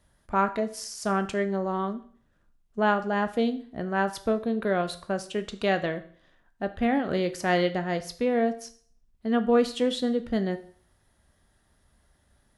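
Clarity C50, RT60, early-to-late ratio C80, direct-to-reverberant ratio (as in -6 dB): 15.0 dB, 0.50 s, 18.5 dB, 9.0 dB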